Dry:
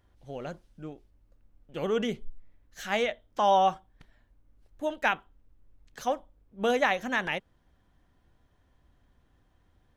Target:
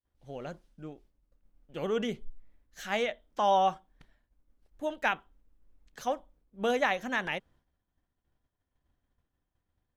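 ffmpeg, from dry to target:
-af "agate=range=0.0224:threshold=0.00178:ratio=3:detection=peak,bandreject=f=50:t=h:w=6,bandreject=f=100:t=h:w=6,volume=0.75"

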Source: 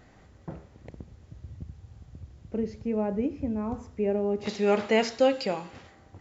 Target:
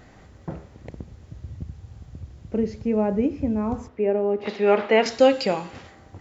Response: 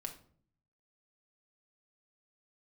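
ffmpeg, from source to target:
-filter_complex "[0:a]asettb=1/sr,asplit=3[s0][s1][s2];[s0]atrim=end=3.884[s3];[s1]atrim=start=3.88:end=5.06,asetpts=PTS-STARTPTS,afade=t=in:d=0.004:c=qsin,afade=t=out:st=1.176:d=0.004:c=qsin,acrossover=split=240 3500:gain=0.224 1 0.0794[s4][s5][s6];[s4][s5][s6]amix=inputs=3:normalize=0[s7];[s2]atrim=start=5.056[s8];[s3][s7]acrossfade=d=0.004:c1=hsin:c2=qsin[s9];[s9][s8]acrossfade=d=0.004:c1=qsin:c2=hsin,volume=2"

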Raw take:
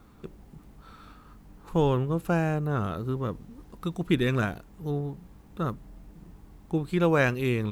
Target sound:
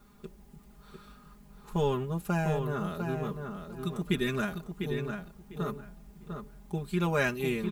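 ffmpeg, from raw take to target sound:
-filter_complex "[0:a]highshelf=f=4100:g=7.5,aecho=1:1:4.9:0.98,asplit=2[s0][s1];[s1]adelay=700,lowpass=f=3500:p=1,volume=0.501,asplit=2[s2][s3];[s3]adelay=700,lowpass=f=3500:p=1,volume=0.22,asplit=2[s4][s5];[s5]adelay=700,lowpass=f=3500:p=1,volume=0.22[s6];[s0][s2][s4][s6]amix=inputs=4:normalize=0,volume=0.422"

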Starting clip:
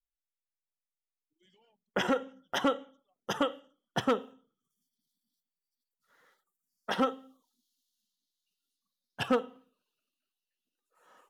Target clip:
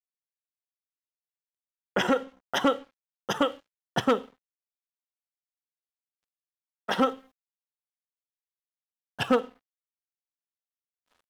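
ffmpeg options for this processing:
-af "acontrast=89,aeval=exprs='sgn(val(0))*max(abs(val(0))-0.00355,0)':c=same,volume=0.75"

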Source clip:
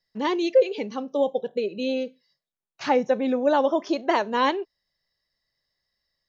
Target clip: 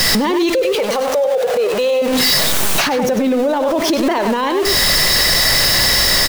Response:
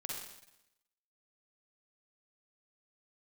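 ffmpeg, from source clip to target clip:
-filter_complex "[0:a]aeval=exprs='val(0)+0.5*0.0282*sgn(val(0))':c=same,asettb=1/sr,asplit=3[s0][s1][s2];[s0]atrim=end=0.754[s3];[s1]atrim=start=0.75:end=2.02,asetpts=PTS-STARTPTS,afade=t=in:d=0.004:c=qsin,afade=t=out:st=1.266:d=0.004:c=qsin,lowshelf=f=390:t=q:w=3:g=-9.5[s4];[s2]atrim=start=2.016[s5];[s3][s4]acrossfade=d=0.004:c1=hsin:c2=qsin[s6];[s6][s5]acrossfade=d=0.004:c1=qsin:c2=hsin,acompressor=threshold=0.0398:ratio=6,aecho=1:1:98:0.316,alimiter=level_in=39.8:limit=0.891:release=50:level=0:latency=1,volume=0.376"

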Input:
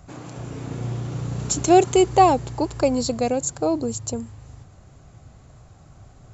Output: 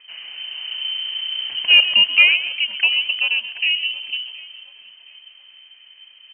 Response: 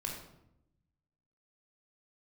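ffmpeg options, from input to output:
-filter_complex "[0:a]highpass=74,asplit=2[s0][s1];[s1]asplit=4[s2][s3][s4][s5];[s2]adelay=129,afreqshift=-63,volume=0.224[s6];[s3]adelay=258,afreqshift=-126,volume=0.0832[s7];[s4]adelay=387,afreqshift=-189,volume=0.0305[s8];[s5]adelay=516,afreqshift=-252,volume=0.0114[s9];[s6][s7][s8][s9]amix=inputs=4:normalize=0[s10];[s0][s10]amix=inputs=2:normalize=0,lowpass=f=2700:t=q:w=0.5098,lowpass=f=2700:t=q:w=0.6013,lowpass=f=2700:t=q:w=0.9,lowpass=f=2700:t=q:w=2.563,afreqshift=-3200,crystalizer=i=2:c=0,asplit=2[s11][s12];[s12]adelay=721,lowpass=f=1800:p=1,volume=0.158,asplit=2[s13][s14];[s14]adelay=721,lowpass=f=1800:p=1,volume=0.45,asplit=2[s15][s16];[s16]adelay=721,lowpass=f=1800:p=1,volume=0.45,asplit=2[s17][s18];[s18]adelay=721,lowpass=f=1800:p=1,volume=0.45[s19];[s13][s15][s17][s19]amix=inputs=4:normalize=0[s20];[s11][s20]amix=inputs=2:normalize=0,volume=0.891"

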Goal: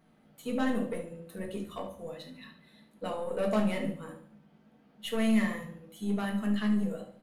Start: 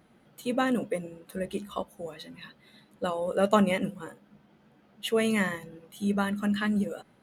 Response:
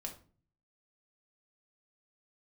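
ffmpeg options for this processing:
-filter_complex "[0:a]aeval=exprs='(tanh(11.2*val(0)+0.25)-tanh(0.25))/11.2':c=same,aecho=1:1:72|144|216|288:0.251|0.098|0.0382|0.0149[s0];[1:a]atrim=start_sample=2205[s1];[s0][s1]afir=irnorm=-1:irlink=0,volume=0.841"

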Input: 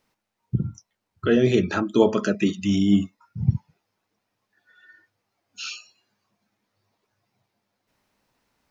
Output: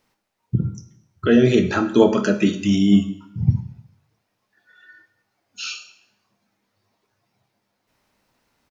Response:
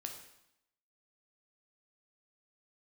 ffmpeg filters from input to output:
-filter_complex "[0:a]asplit=2[s0][s1];[s1]adelay=25,volume=0.2[s2];[s0][s2]amix=inputs=2:normalize=0,asplit=2[s3][s4];[1:a]atrim=start_sample=2205,asetrate=48510,aresample=44100[s5];[s4][s5]afir=irnorm=-1:irlink=0,volume=1.58[s6];[s3][s6]amix=inputs=2:normalize=0,volume=0.75"

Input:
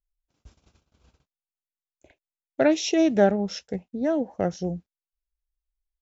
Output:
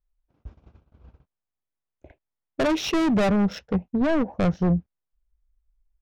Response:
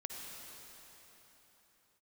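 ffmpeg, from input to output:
-af "volume=21.1,asoftclip=hard,volume=0.0473,adynamicsmooth=sensitivity=3.5:basefreq=1600,asubboost=boost=2:cutoff=200,volume=2.51"

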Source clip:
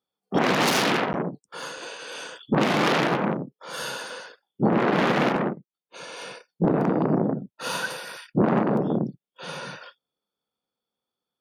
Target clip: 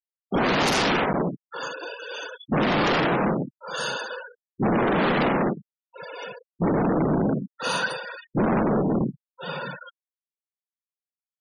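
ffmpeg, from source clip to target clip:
-af "asoftclip=type=hard:threshold=0.0668,afftfilt=real='re*gte(hypot(re,im),0.0224)':imag='im*gte(hypot(re,im),0.0224)':win_size=1024:overlap=0.75,volume=1.68"

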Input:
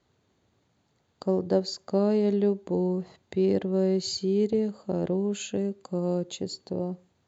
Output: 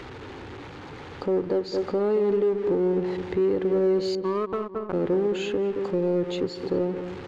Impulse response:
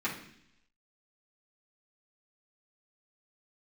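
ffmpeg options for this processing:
-filter_complex "[0:a]aeval=exprs='val(0)+0.5*0.0112*sgn(val(0))':c=same,lowpass=2200,equalizer=f=240:t=o:w=0.67:g=12,acrossover=split=780[s0][s1];[s0]aecho=1:1:2.3:0.76[s2];[s1]acompressor=mode=upward:threshold=0.00224:ratio=2.5[s3];[s2][s3]amix=inputs=2:normalize=0,asettb=1/sr,asplit=3[s4][s5][s6];[s4]atrim=end=4.154[s7];[s5]atrim=start=4.15:end=4.93,asetpts=PTS-STARTPTS,afade=t=in:d=0.004:c=qsin,afade=t=out:st=0.776:d=0.004:c=qsin,aeval=exprs='0.266*(cos(1*acos(clip(val(0)/0.266,-1,1)))-cos(1*PI/2))+0.0841*(cos(3*acos(clip(val(0)/0.266,-1,1)))-cos(3*PI/2))':c=same[s8];[s6]atrim=start=4.926[s9];[s7][s8]acrossfade=d=0.004:c1=hsin:c2=qsin[s10];[s10][s9]acrossfade=d=0.004:c1=qsin:c2=hsin,tiltshelf=f=800:g=-4.5,asplit=2[s11][s12];[s12]adelay=220,lowpass=f=1400:p=1,volume=0.316,asplit=2[s13][s14];[s14]adelay=220,lowpass=f=1400:p=1,volume=0.38,asplit=2[s15][s16];[s16]adelay=220,lowpass=f=1400:p=1,volume=0.38,asplit=2[s17][s18];[s18]adelay=220,lowpass=f=1400:p=1,volume=0.38[s19];[s11][s13][s15][s17][s19]amix=inputs=5:normalize=0,asplit=2[s20][s21];[s21]volume=22.4,asoftclip=hard,volume=0.0447,volume=0.355[s22];[s20][s22]amix=inputs=2:normalize=0,alimiter=limit=0.119:level=0:latency=1:release=202,volume=1.26"

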